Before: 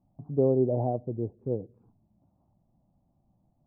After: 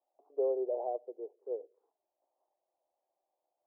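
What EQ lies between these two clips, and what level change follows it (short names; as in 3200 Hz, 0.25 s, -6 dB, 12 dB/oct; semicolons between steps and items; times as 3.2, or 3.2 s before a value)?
steep high-pass 410 Hz 48 dB/oct; Bessel low-pass 940 Hz; -3.0 dB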